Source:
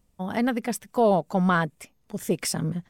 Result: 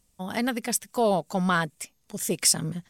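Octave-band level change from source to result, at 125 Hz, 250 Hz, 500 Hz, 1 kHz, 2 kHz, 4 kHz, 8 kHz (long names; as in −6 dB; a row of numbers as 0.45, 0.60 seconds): −3.5, −3.5, −3.0, −2.0, 0.0, +7.0, +9.0 decibels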